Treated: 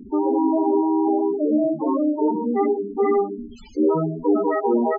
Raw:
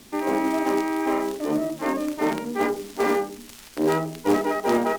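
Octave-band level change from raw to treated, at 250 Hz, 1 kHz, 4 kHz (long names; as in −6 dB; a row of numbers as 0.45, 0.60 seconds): +5.0 dB, +1.5 dB, below −15 dB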